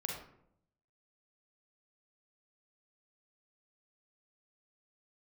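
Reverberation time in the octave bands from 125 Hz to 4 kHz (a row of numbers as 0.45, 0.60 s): 1.0, 0.90, 0.80, 0.65, 0.55, 0.35 s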